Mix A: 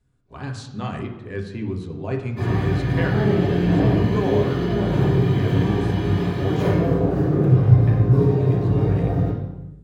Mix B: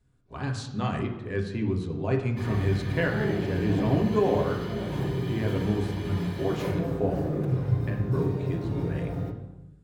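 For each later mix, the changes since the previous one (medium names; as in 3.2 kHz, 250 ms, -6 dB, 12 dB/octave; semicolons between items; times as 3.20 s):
background: send -11.5 dB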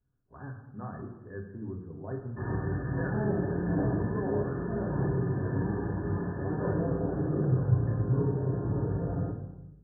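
speech -11.0 dB; master: add brick-wall FIR low-pass 1.8 kHz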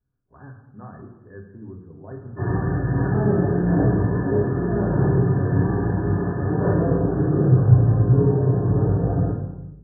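background: send +11.0 dB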